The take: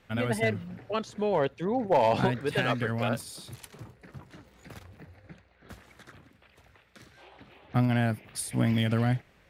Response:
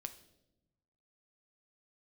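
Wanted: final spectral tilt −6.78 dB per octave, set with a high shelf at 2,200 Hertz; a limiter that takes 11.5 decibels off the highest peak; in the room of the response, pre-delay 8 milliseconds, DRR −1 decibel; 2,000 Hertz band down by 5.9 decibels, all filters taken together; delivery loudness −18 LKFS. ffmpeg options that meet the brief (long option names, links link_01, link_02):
-filter_complex "[0:a]equalizer=frequency=2000:width_type=o:gain=-4,highshelf=frequency=2200:gain=-7,alimiter=level_in=2.5dB:limit=-24dB:level=0:latency=1,volume=-2.5dB,asplit=2[link_01][link_02];[1:a]atrim=start_sample=2205,adelay=8[link_03];[link_02][link_03]afir=irnorm=-1:irlink=0,volume=4.5dB[link_04];[link_01][link_04]amix=inputs=2:normalize=0,volume=14dB"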